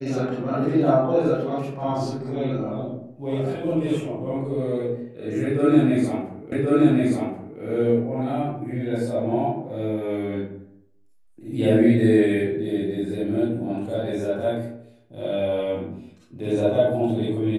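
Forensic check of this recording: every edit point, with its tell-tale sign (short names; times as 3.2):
6.52 repeat of the last 1.08 s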